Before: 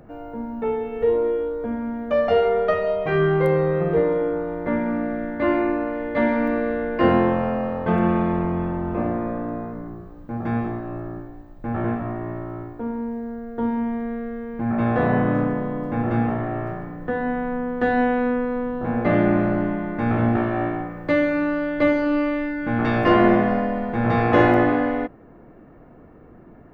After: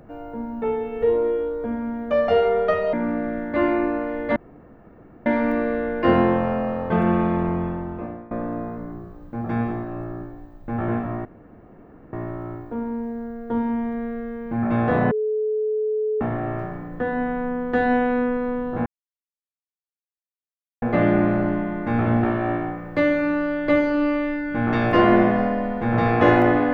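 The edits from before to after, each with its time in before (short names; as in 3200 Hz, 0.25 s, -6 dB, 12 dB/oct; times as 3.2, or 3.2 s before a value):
2.93–4.79 cut
6.22 insert room tone 0.90 s
8.5–9.27 fade out, to -20.5 dB
12.21 insert room tone 0.88 s
15.19–16.29 bleep 430 Hz -20 dBFS
18.94 insert silence 1.96 s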